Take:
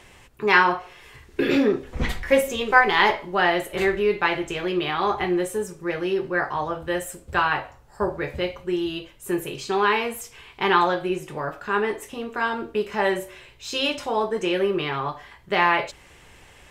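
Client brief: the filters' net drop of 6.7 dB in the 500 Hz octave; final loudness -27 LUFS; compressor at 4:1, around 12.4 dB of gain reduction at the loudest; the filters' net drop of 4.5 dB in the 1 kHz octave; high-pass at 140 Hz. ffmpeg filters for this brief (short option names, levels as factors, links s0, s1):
-af "highpass=140,equalizer=f=500:t=o:g=-8.5,equalizer=f=1000:t=o:g=-3,acompressor=threshold=0.0398:ratio=4,volume=1.88"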